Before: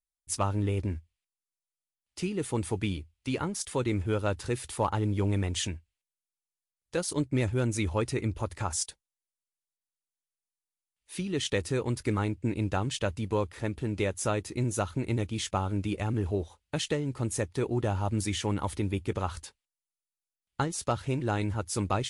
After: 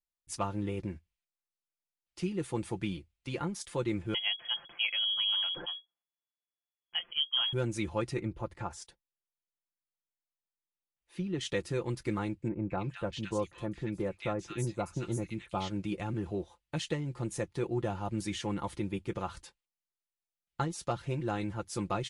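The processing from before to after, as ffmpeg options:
ffmpeg -i in.wav -filter_complex "[0:a]asettb=1/sr,asplit=3[link_01][link_02][link_03];[link_01]atrim=end=4.144[link_04];[link_02]atrim=start=4.14:end=7.53,asetpts=PTS-STARTPTS,afade=type=in:duration=0.004:curve=qsin,afade=type=out:start_time=3.386:duration=0.004:curve=qsin,lowpass=frequency=2900:width_type=q:width=0.5098,lowpass=frequency=2900:width_type=q:width=0.6013,lowpass=frequency=2900:width_type=q:width=0.9,lowpass=frequency=2900:width_type=q:width=2.563,afreqshift=-3400[link_05];[link_03]atrim=start=7.526[link_06];[link_04][link_05]acrossfade=duration=0.004:curve1=hsin:curve2=qsin[link_07];[link_07][link_06]acrossfade=duration=0.004:curve1=qsin:curve2=hsin,asettb=1/sr,asplit=3[link_08][link_09][link_10];[link_08]atrim=end=8.194[link_11];[link_09]atrim=start=8.19:end=11.41,asetpts=PTS-STARTPTS,afade=type=in:duration=0.004:curve=qsin,afade=type=out:start_time=3.216:duration=0.004:curve=qsin,highshelf=frequency=3000:gain=-11[link_12];[link_10]atrim=start=11.406[link_13];[link_11][link_12]acrossfade=duration=0.004:curve1=hsin:curve2=qsin[link_14];[link_14][link_13]acrossfade=duration=0.004:curve1=qsin:curve2=hsin,asettb=1/sr,asplit=3[link_15][link_16][link_17];[link_15]atrim=end=12.484[link_18];[link_16]atrim=start=12.48:end=15.7,asetpts=PTS-STARTPTS,afade=type=in:duration=0.004:curve=qsin,afade=type=out:start_time=3.216:duration=0.004:curve=qsin,acrossover=split=1600|5700[link_19][link_20][link_21];[link_20]adelay=220[link_22];[link_21]adelay=410[link_23];[link_19][link_22][link_23]amix=inputs=3:normalize=0,atrim=end_sample=142002[link_24];[link_17]atrim=start=15.696[link_25];[link_18][link_24]acrossfade=duration=0.004:curve1=hsin:curve2=qsin[link_26];[link_26][link_25]acrossfade=duration=0.004:curve1=qsin:curve2=hsin,highshelf=frequency=7900:gain=-9,aecho=1:1:5.8:0.59,volume=-5dB" out.wav

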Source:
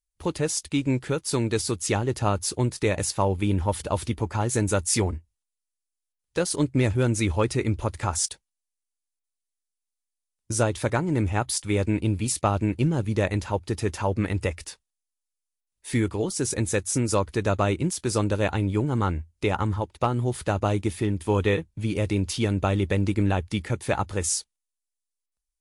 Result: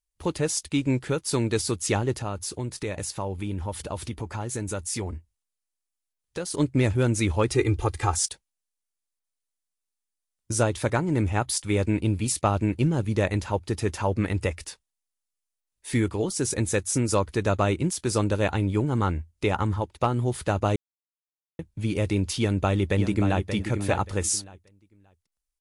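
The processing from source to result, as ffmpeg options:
ffmpeg -i in.wav -filter_complex "[0:a]asettb=1/sr,asplit=3[link_01][link_02][link_03];[link_01]atrim=end=2.124[link_04];[link_02]atrim=start=2.12:end=6.54,asetpts=PTS-STARTPTS,afade=type=in:duration=0.004:curve=qsin,afade=type=out:start_time=4.416:duration=0.004:curve=qsin,acompressor=threshold=-32dB:ratio=2:attack=3.2:release=140:knee=1:detection=peak[link_05];[link_03]atrim=start=6.536[link_06];[link_04][link_05]acrossfade=duration=0.004:curve1=hsin:curve2=qsin[link_07];[link_07][link_06]acrossfade=duration=0.004:curve1=qsin:curve2=hsin,asettb=1/sr,asplit=3[link_08][link_09][link_10];[link_08]atrim=end=7.514[link_11];[link_09]atrim=start=7.51:end=8.15,asetpts=PTS-STARTPTS,afade=type=in:duration=0.004:curve=qsin,afade=type=out:start_time=0.636:duration=0.004:curve=qsin,aecho=1:1:2.5:0.87,atrim=end_sample=28224[link_12];[link_10]atrim=start=8.146[link_13];[link_11][link_12]acrossfade=duration=0.004:curve1=hsin:curve2=qsin[link_14];[link_14][link_13]acrossfade=duration=0.004:curve1=qsin:curve2=hsin,asplit=2[link_15][link_16];[link_16]afade=type=in:start_time=22.39:duration=0.01,afade=type=out:start_time=23.52:duration=0.01,aecho=0:1:580|1160|1740:0.398107|0.0796214|0.0159243[link_17];[link_15][link_17]amix=inputs=2:normalize=0,asplit=3[link_18][link_19][link_20];[link_18]atrim=end=20.76,asetpts=PTS-STARTPTS,afade=type=out:start_time=20.756:duration=0.004:curve=hsin[link_21];[link_19]atrim=start=20.76:end=21.59,asetpts=PTS-STARTPTS,volume=0[link_22];[link_20]atrim=start=21.59,asetpts=PTS-STARTPTS,afade=type=in:duration=0.004:curve=hsin[link_23];[link_21][link_22][link_23]concat=n=3:v=0:a=1" out.wav

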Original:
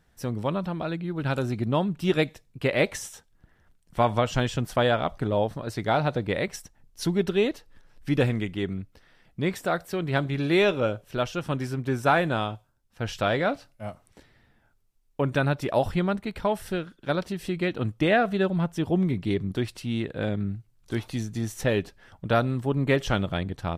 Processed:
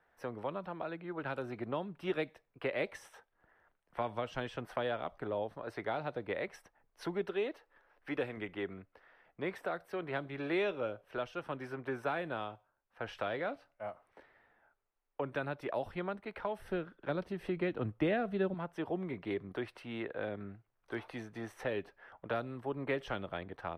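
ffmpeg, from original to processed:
ffmpeg -i in.wav -filter_complex "[0:a]asettb=1/sr,asplit=3[link_01][link_02][link_03];[link_01]atrim=end=7.244[link_04];[link_02]atrim=start=7.24:end=8.37,asetpts=PTS-STARTPTS,afade=type=in:duration=0.004:curve=qsin,afade=type=out:start_time=1.126:duration=0.004:curve=qsin,bass=frequency=250:gain=-6,treble=frequency=4000:gain=0[link_05];[link_03]atrim=start=8.366[link_06];[link_04][link_05]acrossfade=duration=0.004:curve1=hsin:curve2=qsin[link_07];[link_07][link_06]acrossfade=duration=0.004:curve1=qsin:curve2=hsin,asettb=1/sr,asplit=3[link_08][link_09][link_10];[link_08]atrim=end=16.584[link_11];[link_09]atrim=start=16.58:end=18.54,asetpts=PTS-STARTPTS,afade=type=in:duration=0.004:curve=qsin,afade=type=out:start_time=1.956:duration=0.004:curve=qsin,lowshelf=frequency=300:gain=11[link_12];[link_10]atrim=start=18.536[link_13];[link_11][link_12]acrossfade=duration=0.004:curve1=hsin:curve2=qsin[link_14];[link_14][link_13]acrossfade=duration=0.004:curve1=qsin:curve2=hsin,acrossover=split=420 2200:gain=0.0891 1 0.0794[link_15][link_16][link_17];[link_15][link_16][link_17]amix=inputs=3:normalize=0,bandreject=frequency=7100:width=5.4,acrossover=split=320|3000[link_18][link_19][link_20];[link_19]acompressor=threshold=-40dB:ratio=4[link_21];[link_18][link_21][link_20]amix=inputs=3:normalize=0,volume=1dB" out.wav

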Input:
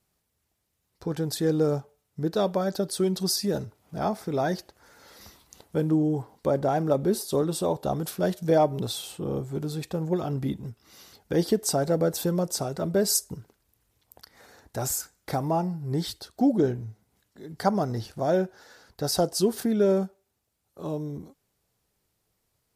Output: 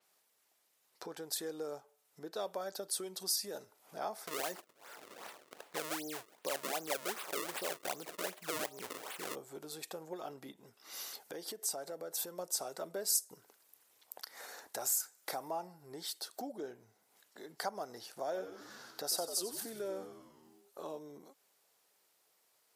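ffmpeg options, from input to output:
ffmpeg -i in.wav -filter_complex "[0:a]asplit=3[link_01][link_02][link_03];[link_01]afade=type=out:start_time=4.26:duration=0.02[link_04];[link_02]acrusher=samples=32:mix=1:aa=0.000001:lfo=1:lforange=51.2:lforate=2.6,afade=type=in:start_time=4.26:duration=0.02,afade=type=out:start_time=9.34:duration=0.02[link_05];[link_03]afade=type=in:start_time=9.34:duration=0.02[link_06];[link_04][link_05][link_06]amix=inputs=3:normalize=0,asettb=1/sr,asplit=3[link_07][link_08][link_09];[link_07]atrim=end=10.514[link_10];[link_08]atrim=start=10.51:end=12.39,asetpts=PTS-STARTPTS,afade=type=in:duration=0.004:curve=qsin,afade=type=out:start_time=1.876:duration=0.004:curve=qsin,acompressor=threshold=-37dB:ratio=2:attack=3.2:release=140:knee=1:detection=peak[link_11];[link_09]atrim=start=12.386[link_12];[link_10][link_11]acrossfade=duration=0.004:curve1=hsin:curve2=qsin[link_13];[link_13][link_12]acrossfade=duration=0.004:curve1=qsin:curve2=hsin,asettb=1/sr,asplit=3[link_14][link_15][link_16];[link_14]atrim=end=18.224[link_17];[link_15]atrim=start=18.22:end=20.99,asetpts=PTS-STARTPTS,afade=type=in:duration=0.004:curve=qsin,afade=type=out:start_time=2.766:duration=0.004:curve=qsin,asplit=8[link_18][link_19][link_20][link_21][link_22][link_23][link_24][link_25];[link_19]adelay=92,afreqshift=-85,volume=-8.5dB[link_26];[link_20]adelay=184,afreqshift=-170,volume=-13.5dB[link_27];[link_21]adelay=276,afreqshift=-255,volume=-18.6dB[link_28];[link_22]adelay=368,afreqshift=-340,volume=-23.6dB[link_29];[link_23]adelay=460,afreqshift=-425,volume=-28.6dB[link_30];[link_24]adelay=552,afreqshift=-510,volume=-33.7dB[link_31];[link_25]adelay=644,afreqshift=-595,volume=-38.7dB[link_32];[link_18][link_26][link_27][link_28][link_29][link_30][link_31][link_32]amix=inputs=8:normalize=0,atrim=end_sample=122157[link_33];[link_16]atrim=start=20.986[link_34];[link_17][link_33]acrossfade=duration=0.004:curve1=hsin:curve2=qsin[link_35];[link_35][link_34]acrossfade=duration=0.004:curve1=qsin:curve2=hsin,acompressor=threshold=-45dB:ratio=2.5,highpass=530,adynamicequalizer=threshold=0.001:dfrequency=6300:dqfactor=0.7:tfrequency=6300:tqfactor=0.7:attack=5:release=100:ratio=0.375:range=3.5:mode=boostabove:tftype=highshelf,volume=4dB" out.wav

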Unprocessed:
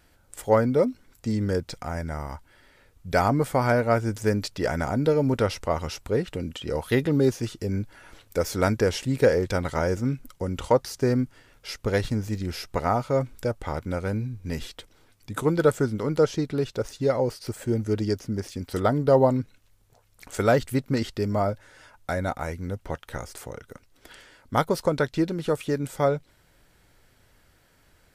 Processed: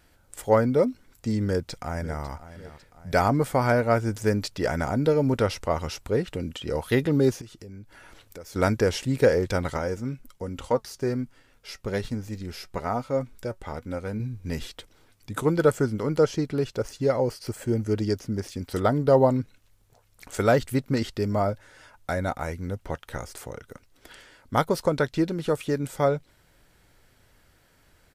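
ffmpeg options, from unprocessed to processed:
ffmpeg -i in.wav -filter_complex "[0:a]asplit=2[link_01][link_02];[link_02]afade=type=in:start_time=1.45:duration=0.01,afade=type=out:start_time=2.22:duration=0.01,aecho=0:1:550|1100|1650|2200|2750:0.188365|0.0941825|0.0470912|0.0235456|0.0117728[link_03];[link_01][link_03]amix=inputs=2:normalize=0,asettb=1/sr,asplit=3[link_04][link_05][link_06];[link_04]atrim=end=7.414[link_07];[link_05]atrim=start=7.41:end=8.56,asetpts=PTS-STARTPTS,afade=type=in:duration=0.004:curve=qsin,afade=type=out:start_time=1.146:duration=0.004:curve=qsin,acompressor=threshold=-44dB:ratio=3:attack=3.2:release=140:knee=1:detection=peak[link_08];[link_06]atrim=start=8.556[link_09];[link_07][link_08]acrossfade=duration=0.004:curve1=hsin:curve2=qsin[link_10];[link_10][link_09]acrossfade=duration=0.004:curve1=qsin:curve2=hsin,asettb=1/sr,asplit=3[link_11][link_12][link_13];[link_11]atrim=end=9.774[link_14];[link_12]atrim=start=9.77:end=14.2,asetpts=PTS-STARTPTS,afade=type=in:duration=0.004:curve=qsin,afade=type=out:start_time=4.426:duration=0.004:curve=qsin,flanger=delay=3.7:depth=1.7:regen=69:speed=1.2:shape=sinusoidal[link_15];[link_13]atrim=start=14.196[link_16];[link_14][link_15]acrossfade=duration=0.004:curve1=hsin:curve2=qsin[link_17];[link_17][link_16]acrossfade=duration=0.004:curve1=qsin:curve2=hsin,asettb=1/sr,asplit=3[link_18][link_19][link_20];[link_18]atrim=end=15.514[link_21];[link_19]atrim=start=15.51:end=17.99,asetpts=PTS-STARTPTS,afade=type=in:duration=0.004:curve=qsin,afade=type=out:start_time=2.476:duration=0.004:curve=qsin,bandreject=frequency=3700:width=12[link_22];[link_20]atrim=start=17.986[link_23];[link_21][link_22]acrossfade=duration=0.004:curve1=hsin:curve2=qsin[link_24];[link_24][link_23]acrossfade=duration=0.004:curve1=qsin:curve2=hsin" out.wav

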